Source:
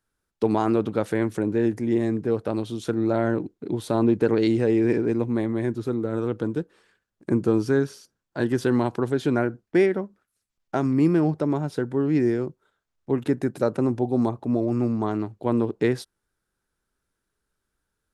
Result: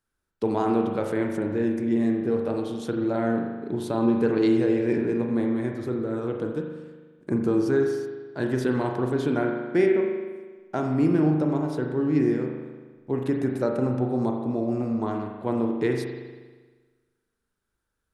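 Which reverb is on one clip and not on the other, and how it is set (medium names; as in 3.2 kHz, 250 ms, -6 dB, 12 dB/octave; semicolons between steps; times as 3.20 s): spring tank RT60 1.4 s, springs 39 ms, chirp 55 ms, DRR 2 dB; trim -3.5 dB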